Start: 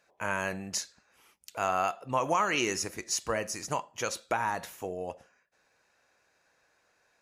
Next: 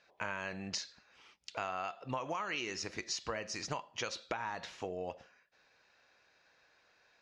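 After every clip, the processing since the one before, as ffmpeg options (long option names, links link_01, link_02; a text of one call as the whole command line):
ffmpeg -i in.wav -af "lowpass=frequency=4700:width=0.5412,lowpass=frequency=4700:width=1.3066,highshelf=frequency=3000:gain=10.5,acompressor=threshold=-34dB:ratio=6,volume=-1dB" out.wav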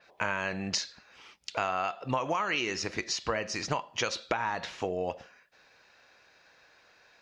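ffmpeg -i in.wav -af "adynamicequalizer=threshold=0.00224:dfrequency=4800:dqfactor=0.7:tfrequency=4800:tqfactor=0.7:attack=5:release=100:ratio=0.375:range=2.5:mode=cutabove:tftype=highshelf,volume=8dB" out.wav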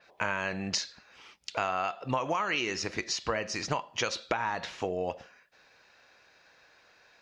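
ffmpeg -i in.wav -af anull out.wav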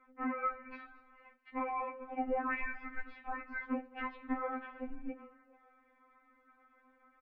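ffmpeg -i in.wav -filter_complex "[0:a]asplit=4[link_01][link_02][link_03][link_04];[link_02]adelay=218,afreqshift=130,volume=-18.5dB[link_05];[link_03]adelay=436,afreqshift=260,volume=-26.2dB[link_06];[link_04]adelay=654,afreqshift=390,volume=-34dB[link_07];[link_01][link_05][link_06][link_07]amix=inputs=4:normalize=0,highpass=frequency=240:width_type=q:width=0.5412,highpass=frequency=240:width_type=q:width=1.307,lowpass=frequency=2400:width_type=q:width=0.5176,lowpass=frequency=2400:width_type=q:width=0.7071,lowpass=frequency=2400:width_type=q:width=1.932,afreqshift=-350,afftfilt=real='re*3.46*eq(mod(b,12),0)':imag='im*3.46*eq(mod(b,12),0)':win_size=2048:overlap=0.75,volume=-2dB" out.wav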